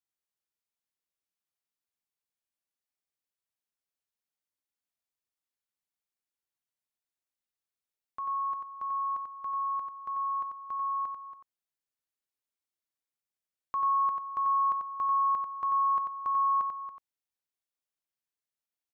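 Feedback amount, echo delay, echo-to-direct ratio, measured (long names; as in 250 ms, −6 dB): repeats not evenly spaced, 91 ms, −5.0 dB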